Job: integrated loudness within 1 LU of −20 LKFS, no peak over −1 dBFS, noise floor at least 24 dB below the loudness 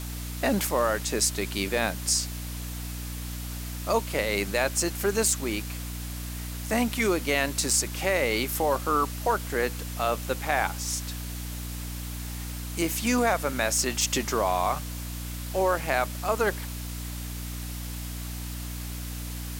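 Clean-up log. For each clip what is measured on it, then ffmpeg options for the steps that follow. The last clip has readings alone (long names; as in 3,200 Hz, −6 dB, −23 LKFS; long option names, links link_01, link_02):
mains hum 60 Hz; hum harmonics up to 300 Hz; level of the hum −33 dBFS; background noise floor −35 dBFS; target noise floor −52 dBFS; integrated loudness −28.0 LKFS; sample peak −9.5 dBFS; target loudness −20.0 LKFS
→ -af "bandreject=frequency=60:width_type=h:width=4,bandreject=frequency=120:width_type=h:width=4,bandreject=frequency=180:width_type=h:width=4,bandreject=frequency=240:width_type=h:width=4,bandreject=frequency=300:width_type=h:width=4"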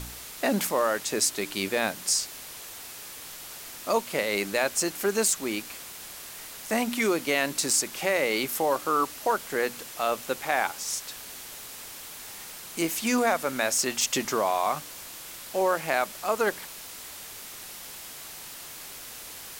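mains hum none found; background noise floor −42 dBFS; target noise floor −51 dBFS
→ -af "afftdn=noise_reduction=9:noise_floor=-42"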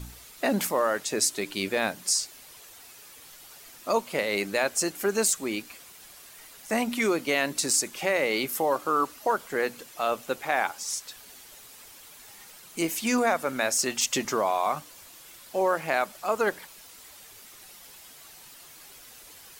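background noise floor −49 dBFS; target noise floor −51 dBFS
→ -af "afftdn=noise_reduction=6:noise_floor=-49"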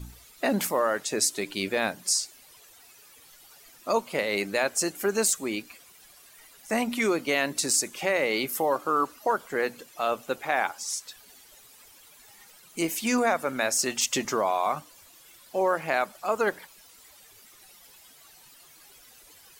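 background noise floor −54 dBFS; integrated loudness −27.0 LKFS; sample peak −10.5 dBFS; target loudness −20.0 LKFS
→ -af "volume=7dB"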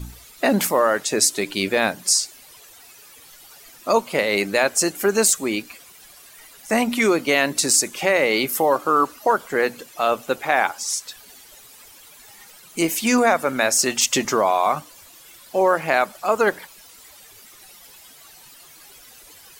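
integrated loudness −20.0 LKFS; sample peak −3.5 dBFS; background noise floor −47 dBFS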